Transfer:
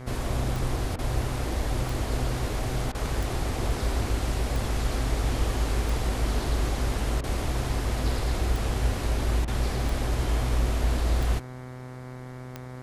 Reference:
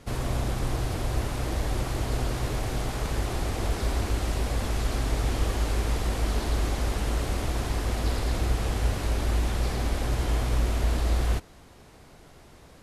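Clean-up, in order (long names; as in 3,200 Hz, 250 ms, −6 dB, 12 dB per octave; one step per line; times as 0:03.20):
click removal
hum removal 126.8 Hz, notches 18
repair the gap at 0:00.96/0:02.92/0:07.21/0:09.45, 26 ms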